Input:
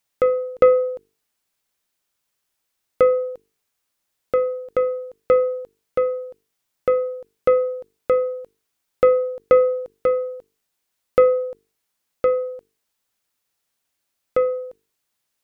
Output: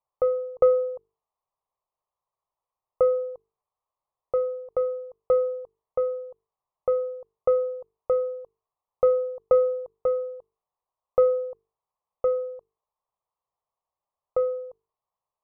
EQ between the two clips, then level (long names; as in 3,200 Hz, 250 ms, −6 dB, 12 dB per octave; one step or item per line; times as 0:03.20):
low-pass with resonance 1,100 Hz, resonance Q 4.9
phaser with its sweep stopped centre 640 Hz, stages 4
−6.0 dB